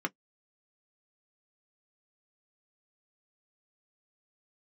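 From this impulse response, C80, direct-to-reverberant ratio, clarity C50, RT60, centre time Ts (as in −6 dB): 60.0 dB, 4.0 dB, 41.0 dB, non-exponential decay, 3 ms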